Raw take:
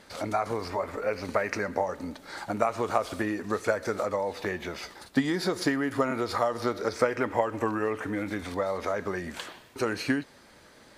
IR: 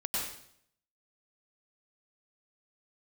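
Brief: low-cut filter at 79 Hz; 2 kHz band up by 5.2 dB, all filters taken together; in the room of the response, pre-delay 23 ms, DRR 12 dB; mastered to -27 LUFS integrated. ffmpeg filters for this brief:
-filter_complex "[0:a]highpass=79,equalizer=f=2000:t=o:g=6.5,asplit=2[s0][s1];[1:a]atrim=start_sample=2205,adelay=23[s2];[s1][s2]afir=irnorm=-1:irlink=0,volume=0.141[s3];[s0][s3]amix=inputs=2:normalize=0,volume=1.19"

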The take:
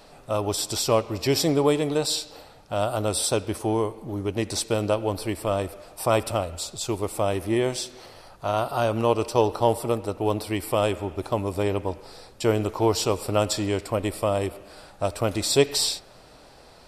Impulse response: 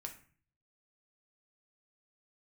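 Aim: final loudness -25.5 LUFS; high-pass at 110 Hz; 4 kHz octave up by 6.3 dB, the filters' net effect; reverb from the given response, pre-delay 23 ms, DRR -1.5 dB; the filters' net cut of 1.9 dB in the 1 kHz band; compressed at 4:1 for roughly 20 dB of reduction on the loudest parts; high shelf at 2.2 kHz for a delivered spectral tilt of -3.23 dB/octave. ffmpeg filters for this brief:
-filter_complex "[0:a]highpass=110,equalizer=f=1000:t=o:g=-3.5,highshelf=f=2200:g=4,equalizer=f=4000:t=o:g=4,acompressor=threshold=0.0112:ratio=4,asplit=2[s0][s1];[1:a]atrim=start_sample=2205,adelay=23[s2];[s1][s2]afir=irnorm=-1:irlink=0,volume=1.68[s3];[s0][s3]amix=inputs=2:normalize=0,volume=3.55"

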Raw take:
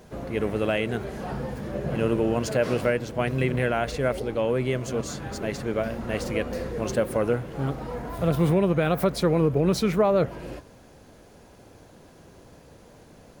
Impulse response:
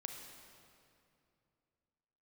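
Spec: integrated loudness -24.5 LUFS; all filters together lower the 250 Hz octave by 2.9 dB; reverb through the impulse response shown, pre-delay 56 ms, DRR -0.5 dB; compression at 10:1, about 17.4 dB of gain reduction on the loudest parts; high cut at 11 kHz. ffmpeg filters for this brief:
-filter_complex "[0:a]lowpass=11000,equalizer=f=250:t=o:g=-4.5,acompressor=threshold=0.0141:ratio=10,asplit=2[s0][s1];[1:a]atrim=start_sample=2205,adelay=56[s2];[s1][s2]afir=irnorm=-1:irlink=0,volume=1.41[s3];[s0][s3]amix=inputs=2:normalize=0,volume=4.73"

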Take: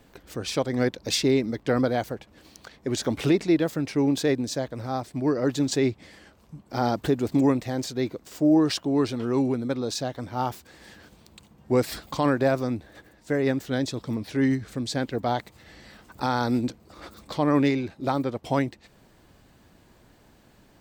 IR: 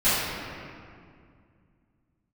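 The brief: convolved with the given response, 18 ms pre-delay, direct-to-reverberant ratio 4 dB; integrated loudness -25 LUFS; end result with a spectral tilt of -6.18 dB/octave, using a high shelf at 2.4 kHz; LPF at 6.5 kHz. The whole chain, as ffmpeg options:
-filter_complex "[0:a]lowpass=6500,highshelf=f=2400:g=-8,asplit=2[s0][s1];[1:a]atrim=start_sample=2205,adelay=18[s2];[s1][s2]afir=irnorm=-1:irlink=0,volume=0.0794[s3];[s0][s3]amix=inputs=2:normalize=0"

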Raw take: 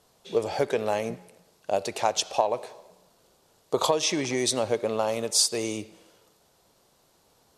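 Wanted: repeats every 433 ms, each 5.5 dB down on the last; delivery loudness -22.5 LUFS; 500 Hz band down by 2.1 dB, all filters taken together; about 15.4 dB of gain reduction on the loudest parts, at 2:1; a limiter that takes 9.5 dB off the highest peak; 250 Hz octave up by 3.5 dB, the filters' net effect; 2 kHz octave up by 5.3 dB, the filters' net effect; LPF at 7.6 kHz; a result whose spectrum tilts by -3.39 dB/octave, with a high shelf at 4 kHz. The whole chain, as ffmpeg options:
-af "lowpass=7600,equalizer=f=250:t=o:g=6,equalizer=f=500:t=o:g=-4.5,equalizer=f=2000:t=o:g=8.5,highshelf=f=4000:g=-6.5,acompressor=threshold=0.00355:ratio=2,alimiter=level_in=2.66:limit=0.0631:level=0:latency=1,volume=0.376,aecho=1:1:433|866|1299|1732|2165|2598|3031:0.531|0.281|0.149|0.079|0.0419|0.0222|0.0118,volume=12.6"

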